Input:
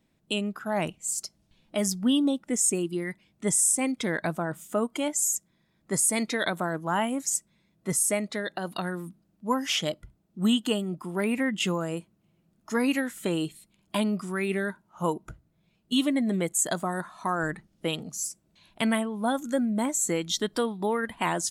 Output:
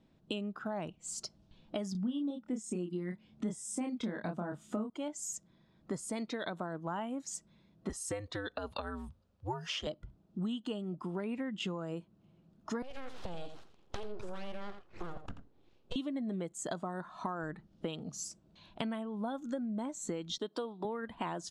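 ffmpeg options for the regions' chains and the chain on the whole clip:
ffmpeg -i in.wav -filter_complex "[0:a]asettb=1/sr,asplit=3[link_01][link_02][link_03];[link_01]atrim=end=1.924[link_04];[link_02]atrim=start=1.92:end=4.9,asetpts=PTS-STARTPTS,afade=type=in:duration=0.004:curve=qsin,afade=type=out:start_time=2.976:duration=0.004:curve=qsin,equalizer=frequency=220:width_type=o:width=0.47:gain=8.5,asplit=2[link_05][link_06];[link_06]adelay=28,volume=-4dB[link_07];[link_05][link_07]amix=inputs=2:normalize=0,atrim=end_sample=131418[link_08];[link_03]atrim=start=4.896[link_09];[link_04][link_08]acrossfade=duration=0.004:curve1=hsin:curve2=qsin[link_10];[link_10][link_09]acrossfade=duration=0.004:curve1=qsin:curve2=hsin,asettb=1/sr,asplit=3[link_11][link_12][link_13];[link_11]atrim=end=7.894[link_14];[link_12]atrim=start=7.89:end=9.87,asetpts=PTS-STARTPTS,afade=type=in:duration=0.004:curve=qsin,afade=type=out:start_time=1.976:duration=0.004:curve=qsin,highpass=frequency=510:poles=1,afreqshift=-110[link_15];[link_13]atrim=start=9.866[link_16];[link_14][link_15]acrossfade=duration=0.004:curve1=hsin:curve2=qsin[link_17];[link_17][link_16]acrossfade=duration=0.004:curve1=qsin:curve2=hsin,asettb=1/sr,asplit=3[link_18][link_19][link_20];[link_18]atrim=end=12.824[link_21];[link_19]atrim=start=12.82:end=15.96,asetpts=PTS-STARTPTS,afade=type=in:duration=0.004:curve=qsin,afade=type=out:start_time=3.136:duration=0.004:curve=qsin,acompressor=threshold=-30dB:ratio=12:attack=3.2:release=140:knee=1:detection=peak,aeval=exprs='abs(val(0))':channel_layout=same,aecho=1:1:85:0.266,atrim=end_sample=138474[link_22];[link_20]atrim=start=15.956[link_23];[link_21][link_22]acrossfade=duration=0.004:curve1=hsin:curve2=qsin[link_24];[link_24][link_23]acrossfade=duration=0.004:curve1=qsin:curve2=hsin,asettb=1/sr,asplit=3[link_25][link_26][link_27];[link_25]atrim=end=20.384[link_28];[link_26]atrim=start=20.38:end=20.85,asetpts=PTS-STARTPTS,afade=type=in:duration=0.004:curve=qsin,afade=type=out:start_time=0.466:duration=0.004:curve=qsin,agate=range=-33dB:threshold=-53dB:ratio=3:release=100:detection=peak,highpass=290,equalizer=frequency=1800:width=2:gain=-6.5[link_29];[link_27]atrim=start=20.846[link_30];[link_28][link_29]acrossfade=duration=0.004:curve1=hsin:curve2=qsin[link_31];[link_31][link_30]acrossfade=duration=0.004:curve1=qsin:curve2=hsin,lowpass=3900,equalizer=frequency=2100:width=1.8:gain=-8,acompressor=threshold=-39dB:ratio=6,volume=3.5dB" out.wav

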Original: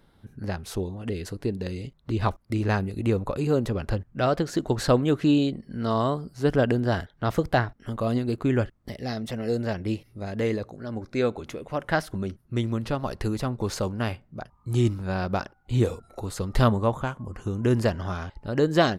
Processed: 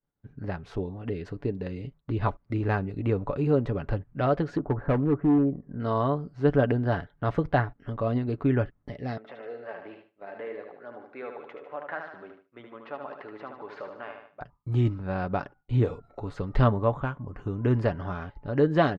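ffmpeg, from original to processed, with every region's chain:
ffmpeg -i in.wav -filter_complex "[0:a]asettb=1/sr,asplit=3[link_01][link_02][link_03];[link_01]atrim=end=4.574[link_04];[link_02]atrim=start=4.57:end=5.8,asetpts=PTS-STARTPTS,afade=type=in:duration=0.004:curve=qsin,afade=type=out:start_time=1.226:duration=0.004:curve=qsin,lowpass=frequency=1400:width=0.5412,lowpass=frequency=1400:width=1.3066,asoftclip=type=hard:threshold=-18dB[link_05];[link_03]atrim=start=5.796[link_06];[link_04][link_05]acrossfade=duration=0.004:curve1=hsin:curve2=qsin[link_07];[link_07][link_06]acrossfade=duration=0.004:curve1=qsin:curve2=hsin,asettb=1/sr,asplit=3[link_08][link_09][link_10];[link_08]atrim=end=9.174[link_11];[link_09]atrim=start=9.17:end=14.41,asetpts=PTS-STARTPTS,afade=type=in:duration=0.004:curve=qsin,afade=type=out:start_time=5.236:duration=0.004:curve=qsin,acompressor=threshold=-29dB:ratio=2:attack=3.2:release=140:knee=1:detection=peak,highpass=570,lowpass=2500,aecho=1:1:75|150|225|300|375|450:0.501|0.261|0.136|0.0705|0.0366|0.0191,atrim=end_sample=231084[link_12];[link_10]atrim=start=14.406[link_13];[link_11][link_12]acrossfade=duration=0.004:curve1=hsin:curve2=qsin[link_14];[link_14][link_13]acrossfade=duration=0.004:curve1=qsin:curve2=hsin,agate=range=-33dB:threshold=-44dB:ratio=3:detection=peak,lowpass=2300,aecho=1:1:7:0.37,volume=-2dB" out.wav

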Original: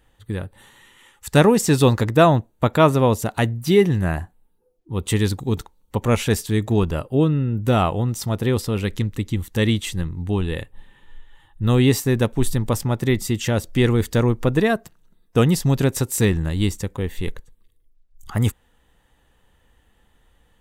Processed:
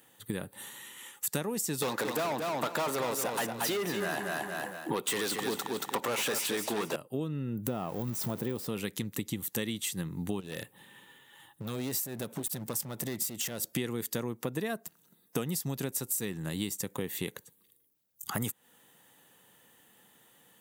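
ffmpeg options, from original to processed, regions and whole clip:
ffmpeg -i in.wav -filter_complex "[0:a]asettb=1/sr,asplit=3[link_01][link_02][link_03];[link_01]atrim=end=1.824[link_04];[link_02]atrim=start=1.82:end=6.96,asetpts=PTS-STARTPTS,afade=type=in:duration=0.004:curve=qsin,afade=type=out:start_time=5.136:duration=0.004:curve=qsin,highpass=frequency=340:poles=1,asplit=2[link_05][link_06];[link_06]highpass=frequency=720:poles=1,volume=32dB,asoftclip=type=tanh:threshold=-2dB[link_07];[link_05][link_07]amix=inputs=2:normalize=0,lowpass=frequency=2100:poles=1,volume=-6dB,aecho=1:1:229|458|687:0.447|0.125|0.035,atrim=end_sample=226674[link_08];[link_03]atrim=start=6.956[link_09];[link_04][link_08]acrossfade=duration=0.004:curve1=hsin:curve2=qsin[link_10];[link_10][link_09]acrossfade=duration=0.004:curve1=qsin:curve2=hsin,asettb=1/sr,asplit=3[link_11][link_12][link_13];[link_11]atrim=end=7.674[link_14];[link_12]atrim=start=7.67:end=8.67,asetpts=PTS-STARTPTS,afade=type=in:duration=0.004:curve=qsin,afade=type=out:start_time=0.996:duration=0.004:curve=qsin,aeval=exprs='val(0)+0.5*0.0355*sgn(val(0))':channel_layout=same,deesser=0.9[link_15];[link_13]atrim=start=8.666[link_16];[link_14][link_15]acrossfade=duration=0.004:curve1=hsin:curve2=qsin[link_17];[link_17][link_16]acrossfade=duration=0.004:curve1=qsin:curve2=hsin,asettb=1/sr,asplit=3[link_18][link_19][link_20];[link_18]atrim=end=10.404[link_21];[link_19]atrim=start=10.4:end=13.63,asetpts=PTS-STARTPTS,afade=type=in:duration=0.004:curve=qsin,afade=type=out:start_time=3.226:duration=0.004:curve=qsin,acompressor=threshold=-27dB:ratio=5:attack=3.2:release=140:knee=1:detection=peak,volume=29dB,asoftclip=hard,volume=-29dB[link_22];[link_20]atrim=start=13.626[link_23];[link_21][link_22]acrossfade=duration=0.004:curve1=hsin:curve2=qsin[link_24];[link_24][link_23]acrossfade=duration=0.004:curve1=qsin:curve2=hsin,highpass=frequency=140:width=0.5412,highpass=frequency=140:width=1.3066,aemphasis=mode=production:type=50fm,acompressor=threshold=-30dB:ratio=10" out.wav

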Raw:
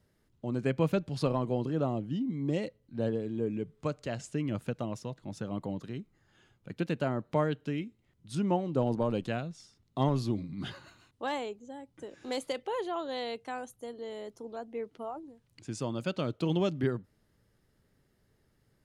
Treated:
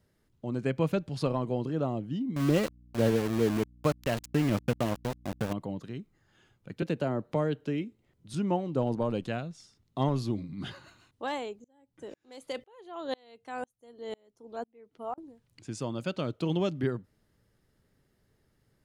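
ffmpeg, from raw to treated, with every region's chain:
ffmpeg -i in.wav -filter_complex "[0:a]asettb=1/sr,asplit=3[link_01][link_02][link_03];[link_01]atrim=end=2.364[link_04];[link_02]atrim=start=2.36:end=5.53,asetpts=PTS-STARTPTS,afade=type=in:duration=0.004:curve=qsin,afade=type=out:start_time=3.166:duration=0.004:curve=qsin,acontrast=53,aeval=exprs='val(0)*gte(abs(val(0)),0.0282)':channel_layout=same,aeval=exprs='val(0)+0.00178*(sin(2*PI*60*n/s)+sin(2*PI*2*60*n/s)/2+sin(2*PI*3*60*n/s)/3+sin(2*PI*4*60*n/s)/4+sin(2*PI*5*60*n/s)/5)':channel_layout=same[link_05];[link_03]atrim=start=5.526[link_06];[link_04][link_05]acrossfade=duration=0.004:curve1=hsin:curve2=qsin[link_07];[link_07][link_06]acrossfade=duration=0.004:curve1=qsin:curve2=hsin,asettb=1/sr,asplit=3[link_08][link_09][link_10];[link_08]atrim=end=6.824[link_11];[link_09]atrim=start=6.82:end=8.34,asetpts=PTS-STARTPTS,afade=type=in:duration=0.004:curve=qsin,afade=type=out:start_time=1.516:duration=0.004:curve=qsin,equalizer=frequency=490:width=0.84:gain=5.5,acrossover=split=270|3000[link_12][link_13][link_14];[link_13]acompressor=threshold=-30dB:ratio=2:attack=3.2:release=140:knee=2.83:detection=peak[link_15];[link_12][link_15][link_14]amix=inputs=3:normalize=0[link_16];[link_10]atrim=start=8.336[link_17];[link_11][link_16]acrossfade=duration=0.004:curve1=hsin:curve2=qsin[link_18];[link_18][link_17]acrossfade=duration=0.004:curve1=qsin:curve2=hsin,asettb=1/sr,asplit=3[link_19][link_20][link_21];[link_19]atrim=end=11.644[link_22];[link_20]atrim=start=11.64:end=15.18,asetpts=PTS-STARTPTS,afade=type=in:duration=0.004:curve=qsin,afade=type=out:start_time=3.536:duration=0.004:curve=qsin,acontrast=61,aeval=exprs='val(0)*pow(10,-35*if(lt(mod(-2*n/s,1),2*abs(-2)/1000),1-mod(-2*n/s,1)/(2*abs(-2)/1000),(mod(-2*n/s,1)-2*abs(-2)/1000)/(1-2*abs(-2)/1000))/20)':channel_layout=same[link_23];[link_21]atrim=start=15.176[link_24];[link_22][link_23]acrossfade=duration=0.004:curve1=hsin:curve2=qsin[link_25];[link_25][link_24]acrossfade=duration=0.004:curve1=qsin:curve2=hsin" out.wav

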